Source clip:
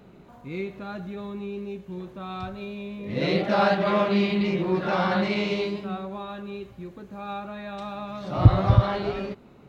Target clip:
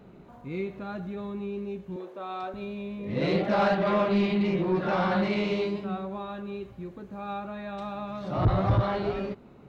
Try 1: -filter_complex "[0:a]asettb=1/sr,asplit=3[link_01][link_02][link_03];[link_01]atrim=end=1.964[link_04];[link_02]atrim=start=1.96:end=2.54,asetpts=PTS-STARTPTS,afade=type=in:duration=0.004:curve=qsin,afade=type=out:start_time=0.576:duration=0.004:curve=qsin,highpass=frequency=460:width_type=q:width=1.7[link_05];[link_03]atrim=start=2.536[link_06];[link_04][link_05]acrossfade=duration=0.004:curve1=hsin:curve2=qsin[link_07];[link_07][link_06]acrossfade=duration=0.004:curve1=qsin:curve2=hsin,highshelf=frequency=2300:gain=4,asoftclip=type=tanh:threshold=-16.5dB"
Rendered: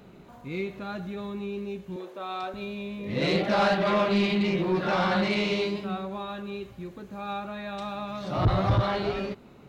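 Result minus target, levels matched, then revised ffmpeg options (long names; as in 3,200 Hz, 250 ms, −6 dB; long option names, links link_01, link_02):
4,000 Hz band +6.0 dB
-filter_complex "[0:a]asettb=1/sr,asplit=3[link_01][link_02][link_03];[link_01]atrim=end=1.964[link_04];[link_02]atrim=start=1.96:end=2.54,asetpts=PTS-STARTPTS,afade=type=in:duration=0.004:curve=qsin,afade=type=out:start_time=0.576:duration=0.004:curve=qsin,highpass=frequency=460:width_type=q:width=1.7[link_05];[link_03]atrim=start=2.536[link_06];[link_04][link_05]acrossfade=duration=0.004:curve1=hsin:curve2=qsin[link_07];[link_07][link_06]acrossfade=duration=0.004:curve1=qsin:curve2=hsin,highshelf=frequency=2300:gain=-6,asoftclip=type=tanh:threshold=-16.5dB"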